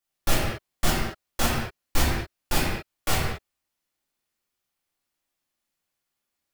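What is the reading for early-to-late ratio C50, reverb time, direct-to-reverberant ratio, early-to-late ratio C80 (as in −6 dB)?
−0.5 dB, non-exponential decay, −7.5 dB, 2.0 dB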